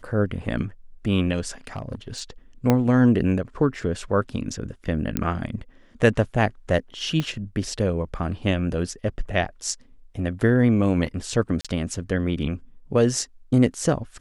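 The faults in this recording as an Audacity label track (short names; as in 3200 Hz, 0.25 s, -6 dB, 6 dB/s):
1.670000	2.200000	clipped -26 dBFS
2.700000	2.700000	pop -6 dBFS
5.170000	5.170000	pop -8 dBFS
7.200000	7.200000	pop -13 dBFS
11.610000	11.650000	gap 36 ms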